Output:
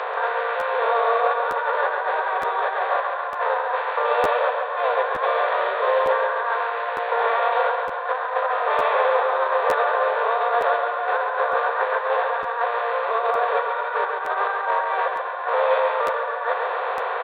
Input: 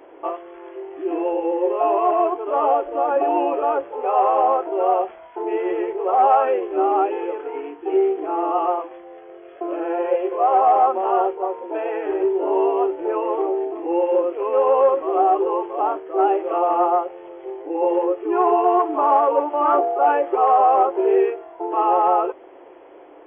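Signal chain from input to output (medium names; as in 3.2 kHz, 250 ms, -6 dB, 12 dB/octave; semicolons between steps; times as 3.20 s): spectral levelling over time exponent 0.4; tilt shelf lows -9 dB, about 710 Hz; compressor with a negative ratio -15 dBFS, ratio -0.5; ladder high-pass 280 Hz, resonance 45%; distance through air 300 m; on a send: feedback delay 185 ms, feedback 59%, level -5.5 dB; on the sum: speed mistake 33 rpm record played at 45 rpm; crackling interface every 0.91 s, samples 512, repeat, from 0.59 s; tape noise reduction on one side only encoder only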